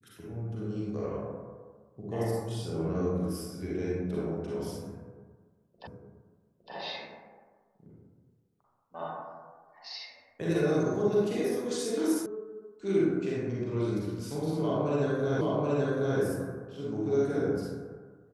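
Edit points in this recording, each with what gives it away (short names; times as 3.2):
5.87 repeat of the last 0.86 s
12.26 sound cut off
15.41 repeat of the last 0.78 s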